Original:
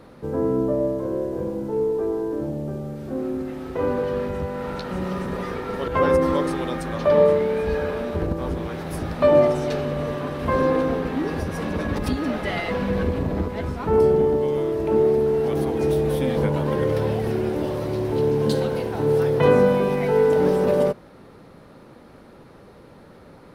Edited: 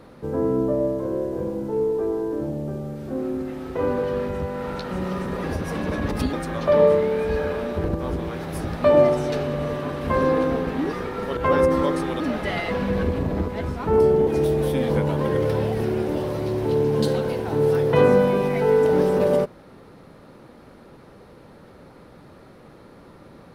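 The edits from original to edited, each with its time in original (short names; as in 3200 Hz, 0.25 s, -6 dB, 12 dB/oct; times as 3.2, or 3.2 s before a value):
5.44–6.71 swap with 11.31–12.2
14.27–15.74 cut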